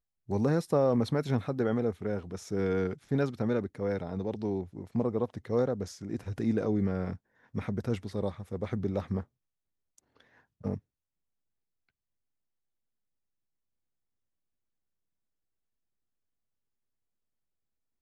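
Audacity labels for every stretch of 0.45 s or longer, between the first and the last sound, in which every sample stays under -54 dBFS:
9.240000	9.980000	silence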